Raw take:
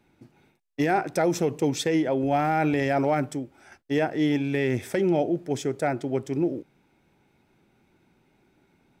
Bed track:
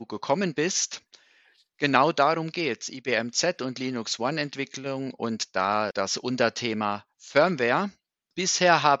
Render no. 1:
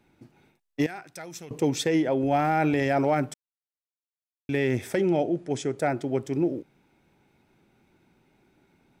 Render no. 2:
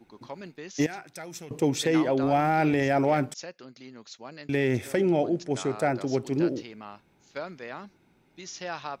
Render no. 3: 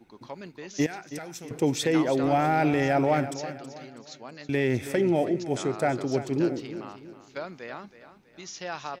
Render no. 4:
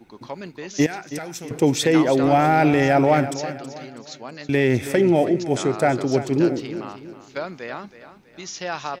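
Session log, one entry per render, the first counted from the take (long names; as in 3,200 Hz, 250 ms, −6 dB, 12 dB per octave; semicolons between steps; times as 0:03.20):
0:00.86–0:01.51: guitar amp tone stack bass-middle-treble 5-5-5; 0:03.34–0:04.49: silence; 0:05.02–0:05.78: Chebyshev low-pass filter 11,000 Hz, order 8
mix in bed track −16 dB
repeating echo 324 ms, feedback 39%, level −13 dB
level +6.5 dB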